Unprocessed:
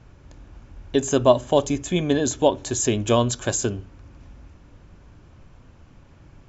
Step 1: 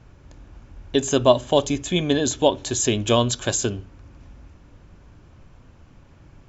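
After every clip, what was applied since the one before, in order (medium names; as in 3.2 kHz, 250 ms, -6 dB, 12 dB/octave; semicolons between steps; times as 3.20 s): dynamic bell 3.5 kHz, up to +6 dB, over -45 dBFS, Q 1.3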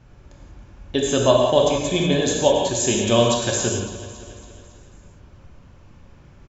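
feedback delay 277 ms, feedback 55%, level -15 dB; gated-style reverb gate 210 ms flat, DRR -1.5 dB; trim -2 dB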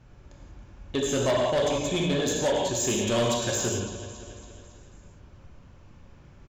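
saturation -16 dBFS, distortion -11 dB; trim -3.5 dB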